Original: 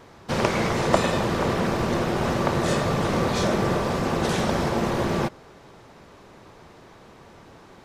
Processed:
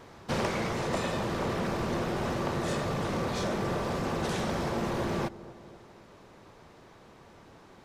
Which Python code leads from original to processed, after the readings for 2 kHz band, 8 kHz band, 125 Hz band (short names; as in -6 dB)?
-7.5 dB, -7.5 dB, -7.5 dB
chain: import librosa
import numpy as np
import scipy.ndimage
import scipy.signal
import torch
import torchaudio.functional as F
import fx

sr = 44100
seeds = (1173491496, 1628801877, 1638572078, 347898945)

p1 = x + fx.echo_wet_lowpass(x, sr, ms=247, feedback_pct=55, hz=1000.0, wet_db=-18.5, dry=0)
p2 = 10.0 ** (-16.0 / 20.0) * np.tanh(p1 / 10.0 ** (-16.0 / 20.0))
p3 = fx.rider(p2, sr, range_db=10, speed_s=0.5)
y = p3 * librosa.db_to_amplitude(-6.0)